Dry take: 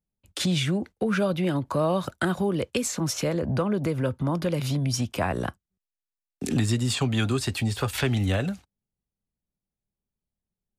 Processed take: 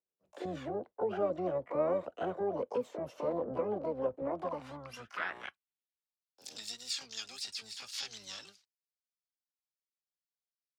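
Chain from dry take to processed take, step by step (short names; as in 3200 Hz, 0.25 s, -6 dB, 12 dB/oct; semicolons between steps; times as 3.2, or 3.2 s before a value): harmoniser -12 st -5 dB, +12 st -3 dB; band-pass sweep 560 Hz -> 4900 Hz, 4.2–6.21; gain -4.5 dB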